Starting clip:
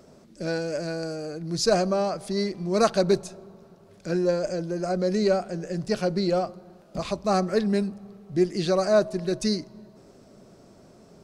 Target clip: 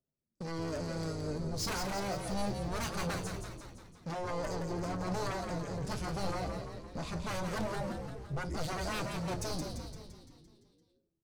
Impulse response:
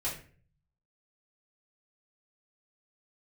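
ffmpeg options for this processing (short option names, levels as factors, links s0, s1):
-filter_complex "[0:a]agate=range=0.0112:threshold=0.00794:ratio=16:detection=peak,bass=f=250:g=11,treble=f=4000:g=3,acrossover=split=3000[s0][s1];[s0]aeval=exprs='0.0841*(abs(mod(val(0)/0.0841+3,4)-2)-1)':c=same[s2];[s2][s1]amix=inputs=2:normalize=0,tremolo=f=2.9:d=0.47,asoftclip=type=tanh:threshold=0.0282,flanger=delay=7.5:depth=7.9:regen=52:speed=0.24:shape=sinusoidal,asplit=9[s3][s4][s5][s6][s7][s8][s9][s10][s11];[s4]adelay=171,afreqshift=-68,volume=0.501[s12];[s5]adelay=342,afreqshift=-136,volume=0.302[s13];[s6]adelay=513,afreqshift=-204,volume=0.18[s14];[s7]adelay=684,afreqshift=-272,volume=0.108[s15];[s8]adelay=855,afreqshift=-340,volume=0.0653[s16];[s9]adelay=1026,afreqshift=-408,volume=0.0389[s17];[s10]adelay=1197,afreqshift=-476,volume=0.0234[s18];[s11]adelay=1368,afreqshift=-544,volume=0.014[s19];[s3][s12][s13][s14][s15][s16][s17][s18][s19]amix=inputs=9:normalize=0,asplit=2[s20][s21];[1:a]atrim=start_sample=2205[s22];[s21][s22]afir=irnorm=-1:irlink=0,volume=0.119[s23];[s20][s23]amix=inputs=2:normalize=0,adynamicequalizer=threshold=0.00355:dfrequency=6600:dqfactor=0.7:tfrequency=6600:tqfactor=0.7:attack=5:release=100:ratio=0.375:range=2:mode=boostabove:tftype=highshelf"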